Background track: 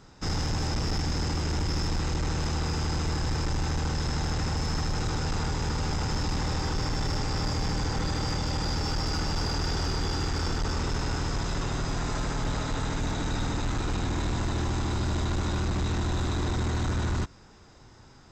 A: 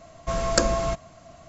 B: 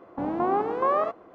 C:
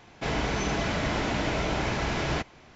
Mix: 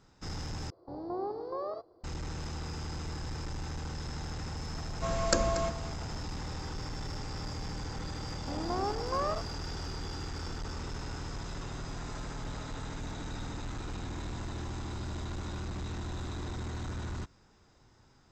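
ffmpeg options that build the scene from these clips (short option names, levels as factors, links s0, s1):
-filter_complex "[2:a]asplit=2[s0][s1];[0:a]volume=0.316[s2];[s0]firequalizer=gain_entry='entry(100,0);entry(220,-18);entry(350,-4);entry(540,-7);entry(2700,-30);entry(4600,12);entry(6700,-18)':delay=0.05:min_phase=1[s3];[1:a]aecho=1:1:234:0.211[s4];[s2]asplit=2[s5][s6];[s5]atrim=end=0.704[s7];[s3]atrim=end=1.34,asetpts=PTS-STARTPTS,volume=0.631[s8];[s6]atrim=start=2.036[s9];[s4]atrim=end=1.48,asetpts=PTS-STARTPTS,volume=0.473,afade=t=in:d=0.004:c=hsin,afade=t=out:st=1.476:d=0.004:c=hsin,adelay=4750[s10];[s1]atrim=end=1.34,asetpts=PTS-STARTPTS,volume=0.355,afade=t=in:d=0.004:c=hsin,afade=t=out:st=1.336:d=0.004:c=hsin,adelay=8300[s11];[s7][s8]acrossfade=d=0.004:c1=hsin:c2=hsin[s12];[s12][s9]acrossfade=d=0.004:c1=hsin:c2=hsin[s13];[s13][s10][s11]amix=inputs=3:normalize=0"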